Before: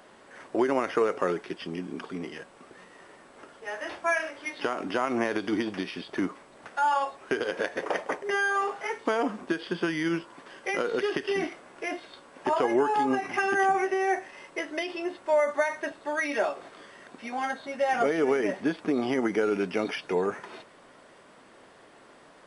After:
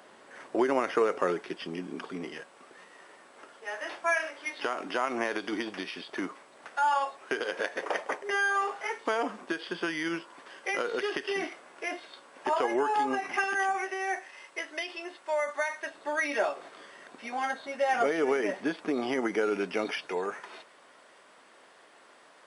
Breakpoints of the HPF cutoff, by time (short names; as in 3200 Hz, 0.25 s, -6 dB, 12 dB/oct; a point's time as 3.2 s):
HPF 6 dB/oct
220 Hz
from 2.4 s 530 Hz
from 13.44 s 1200 Hz
from 15.94 s 360 Hz
from 20.07 s 750 Hz